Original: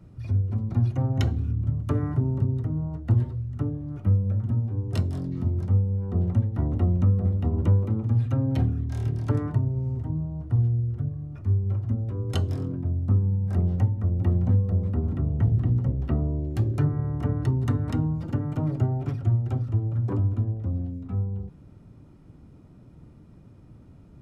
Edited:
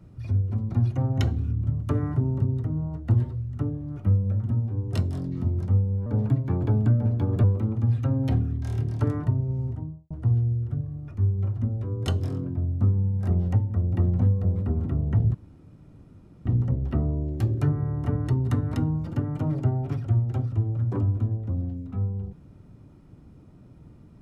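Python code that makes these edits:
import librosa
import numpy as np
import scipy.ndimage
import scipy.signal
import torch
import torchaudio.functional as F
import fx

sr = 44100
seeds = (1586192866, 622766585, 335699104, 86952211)

y = fx.studio_fade_out(x, sr, start_s=9.9, length_s=0.48)
y = fx.edit(y, sr, fx.speed_span(start_s=6.06, length_s=1.65, speed=1.2),
    fx.insert_room_tone(at_s=15.62, length_s=1.11), tone=tone)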